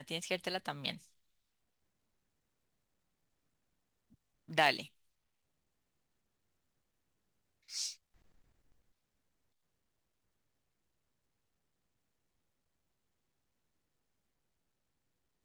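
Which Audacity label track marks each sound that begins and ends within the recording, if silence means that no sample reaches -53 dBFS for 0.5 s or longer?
4.480000	4.870000	sound
7.690000	7.950000	sound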